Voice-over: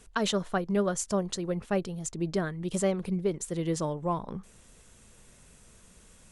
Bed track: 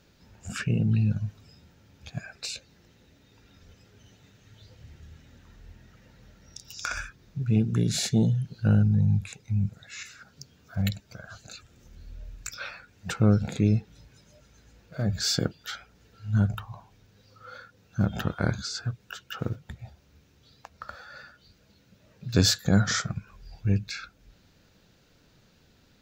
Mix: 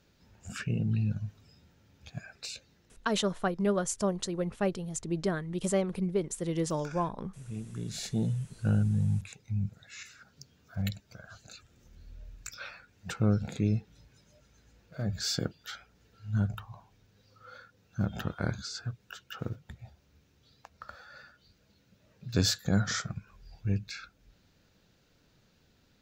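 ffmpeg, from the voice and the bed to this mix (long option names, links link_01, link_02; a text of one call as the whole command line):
ffmpeg -i stem1.wav -i stem2.wav -filter_complex "[0:a]adelay=2900,volume=-1dB[link_01];[1:a]volume=5.5dB,afade=type=out:start_time=2.68:duration=0.49:silence=0.281838,afade=type=in:start_time=7.68:duration=0.75:silence=0.281838[link_02];[link_01][link_02]amix=inputs=2:normalize=0" out.wav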